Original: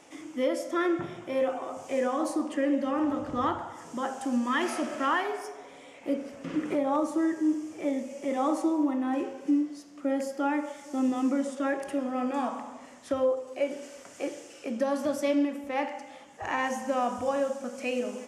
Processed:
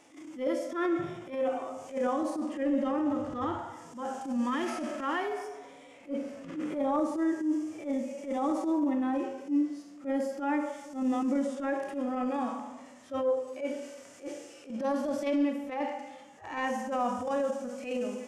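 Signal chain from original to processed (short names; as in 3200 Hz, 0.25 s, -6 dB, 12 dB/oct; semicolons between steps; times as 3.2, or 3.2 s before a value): harmonic-percussive split percussive -16 dB; transient shaper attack -12 dB, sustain +3 dB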